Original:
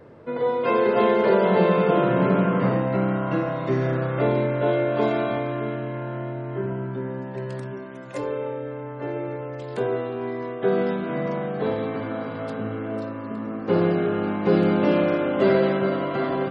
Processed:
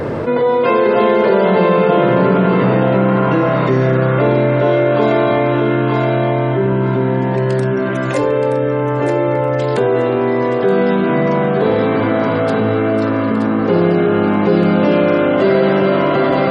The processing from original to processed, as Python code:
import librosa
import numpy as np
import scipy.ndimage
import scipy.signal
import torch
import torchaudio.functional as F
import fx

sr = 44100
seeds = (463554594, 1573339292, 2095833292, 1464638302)

p1 = x + fx.echo_thinned(x, sr, ms=924, feedback_pct=24, hz=420.0, wet_db=-7.5, dry=0)
p2 = fx.env_flatten(p1, sr, amount_pct=70)
y = F.gain(torch.from_numpy(p2), 4.5).numpy()